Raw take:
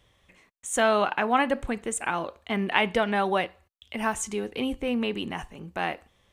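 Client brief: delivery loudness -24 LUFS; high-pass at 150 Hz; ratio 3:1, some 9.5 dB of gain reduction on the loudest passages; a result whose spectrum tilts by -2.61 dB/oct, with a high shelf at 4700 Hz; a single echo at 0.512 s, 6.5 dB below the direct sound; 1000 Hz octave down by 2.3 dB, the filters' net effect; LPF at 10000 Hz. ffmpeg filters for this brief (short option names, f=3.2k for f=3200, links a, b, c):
-af "highpass=150,lowpass=10k,equalizer=f=1k:t=o:g=-3.5,highshelf=f=4.7k:g=8.5,acompressor=threshold=-32dB:ratio=3,aecho=1:1:512:0.473,volume=10dB"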